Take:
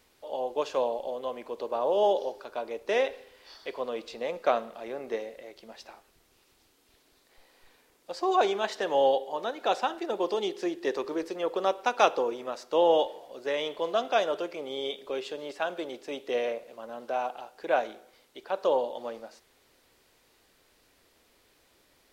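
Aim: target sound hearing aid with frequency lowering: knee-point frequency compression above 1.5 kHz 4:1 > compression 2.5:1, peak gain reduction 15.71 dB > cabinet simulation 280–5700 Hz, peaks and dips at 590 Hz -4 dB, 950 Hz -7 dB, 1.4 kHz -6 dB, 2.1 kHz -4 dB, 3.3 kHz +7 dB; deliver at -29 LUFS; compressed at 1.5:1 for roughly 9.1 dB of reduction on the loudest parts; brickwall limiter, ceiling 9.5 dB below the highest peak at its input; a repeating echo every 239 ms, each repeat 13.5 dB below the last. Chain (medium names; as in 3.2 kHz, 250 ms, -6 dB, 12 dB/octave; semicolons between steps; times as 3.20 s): compression 1.5:1, threshold -44 dBFS; peak limiter -26.5 dBFS; feedback delay 239 ms, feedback 21%, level -13.5 dB; knee-point frequency compression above 1.5 kHz 4:1; compression 2.5:1, threshold -55 dBFS; cabinet simulation 280–5700 Hz, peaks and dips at 590 Hz -4 dB, 950 Hz -7 dB, 1.4 kHz -6 dB, 2.1 kHz -4 dB, 3.3 kHz +7 dB; trim +26.5 dB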